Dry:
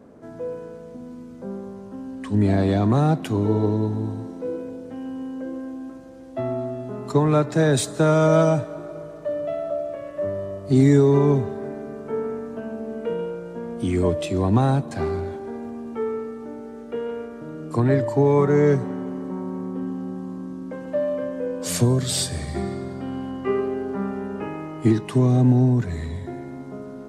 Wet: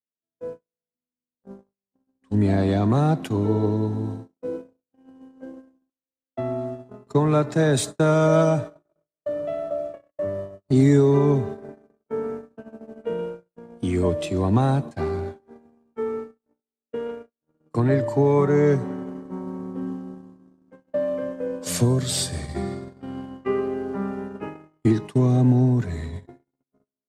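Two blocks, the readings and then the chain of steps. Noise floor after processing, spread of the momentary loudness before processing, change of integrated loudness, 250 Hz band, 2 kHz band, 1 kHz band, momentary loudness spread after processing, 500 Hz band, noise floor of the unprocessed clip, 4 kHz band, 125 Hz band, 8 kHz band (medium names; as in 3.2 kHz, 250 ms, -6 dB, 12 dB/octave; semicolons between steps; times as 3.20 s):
under -85 dBFS, 17 LU, 0.0 dB, -1.5 dB, -1.5 dB, -1.5 dB, 19 LU, -1.0 dB, -39 dBFS, -1.0 dB, -1.0 dB, -1.0 dB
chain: gate -29 dBFS, range -57 dB; trim -1 dB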